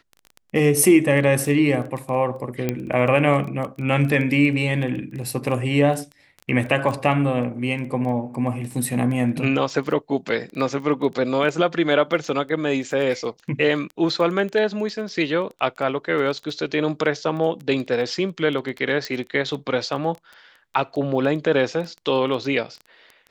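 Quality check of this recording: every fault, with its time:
crackle 11 per s -28 dBFS
2.69 s: pop -9 dBFS
19.05 s: pop -14 dBFS

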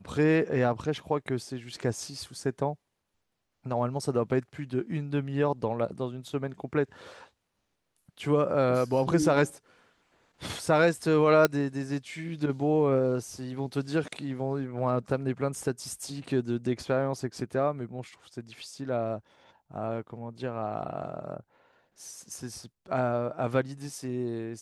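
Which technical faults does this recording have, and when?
11.45 s: pop -7 dBFS

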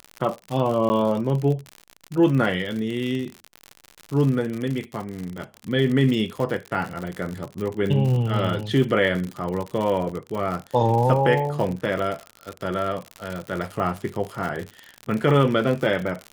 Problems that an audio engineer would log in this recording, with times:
crackle 74 per s -27 dBFS
0.89–0.90 s: dropout 10 ms
10.09 s: dropout 4.2 ms

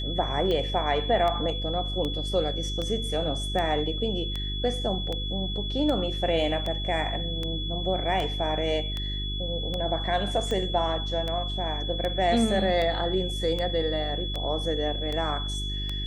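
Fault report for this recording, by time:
hum 50 Hz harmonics 8 -32 dBFS
tick 78 rpm -18 dBFS
whine 3.4 kHz -33 dBFS

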